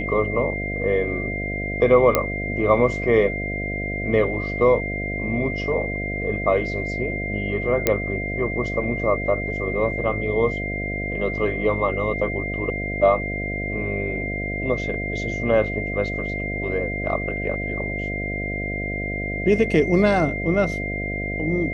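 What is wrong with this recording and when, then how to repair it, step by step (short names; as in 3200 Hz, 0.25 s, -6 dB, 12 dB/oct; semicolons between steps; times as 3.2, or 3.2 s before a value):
buzz 50 Hz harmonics 14 -29 dBFS
tone 2100 Hz -28 dBFS
2.15 pop -3 dBFS
7.87 pop -3 dBFS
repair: de-click; de-hum 50 Hz, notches 14; notch 2100 Hz, Q 30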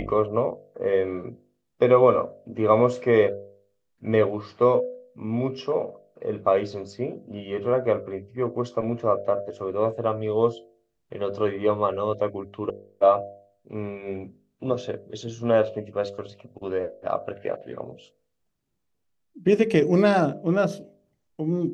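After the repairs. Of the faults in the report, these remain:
none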